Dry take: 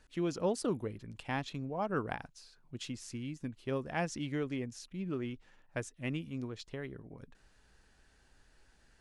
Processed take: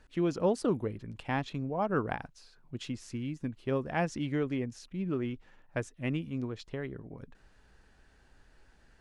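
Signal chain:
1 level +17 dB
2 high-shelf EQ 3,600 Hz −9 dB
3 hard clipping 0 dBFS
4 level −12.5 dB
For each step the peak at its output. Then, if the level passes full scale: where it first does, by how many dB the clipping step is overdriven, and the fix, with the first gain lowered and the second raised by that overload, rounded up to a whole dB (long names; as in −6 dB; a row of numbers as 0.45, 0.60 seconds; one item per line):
−2.5, −3.5, −3.5, −16.0 dBFS
no step passes full scale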